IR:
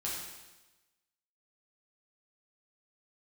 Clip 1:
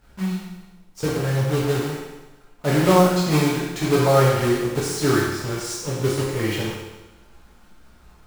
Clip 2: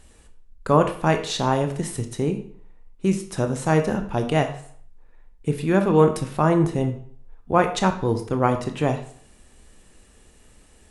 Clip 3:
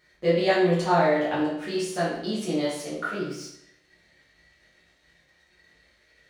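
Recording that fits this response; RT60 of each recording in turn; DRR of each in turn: 1; 1.1, 0.55, 0.75 s; -6.5, 6.0, -11.0 dB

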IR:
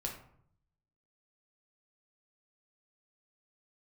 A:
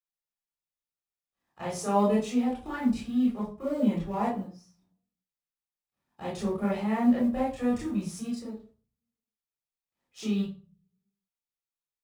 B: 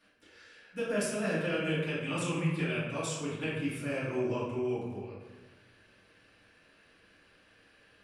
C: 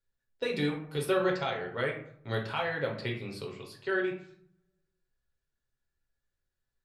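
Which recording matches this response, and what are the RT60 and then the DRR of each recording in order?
C; 0.40, 1.2, 0.65 s; -6.5, -11.5, -0.5 dB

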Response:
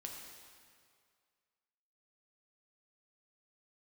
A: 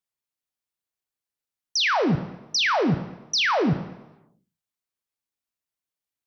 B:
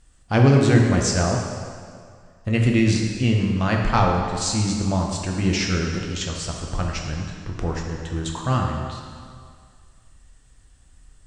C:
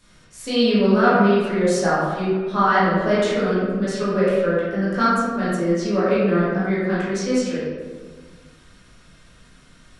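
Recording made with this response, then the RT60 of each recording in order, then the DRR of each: B; 1.0, 2.1, 1.6 s; 8.5, 0.0, -10.0 dB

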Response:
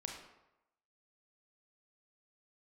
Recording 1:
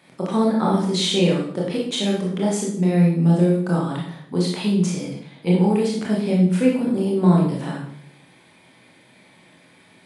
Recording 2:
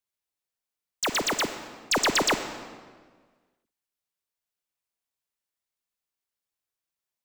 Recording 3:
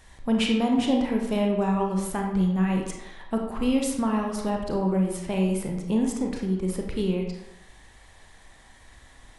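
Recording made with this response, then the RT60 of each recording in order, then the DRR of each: 3; 0.65, 1.6, 0.90 s; -3.5, 8.0, 1.0 dB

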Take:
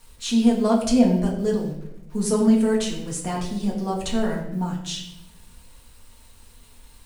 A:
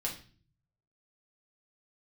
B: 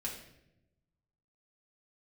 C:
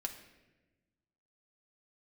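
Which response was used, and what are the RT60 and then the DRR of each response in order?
B; 0.40, 0.85, 1.1 s; -2.5, -3.5, 3.0 dB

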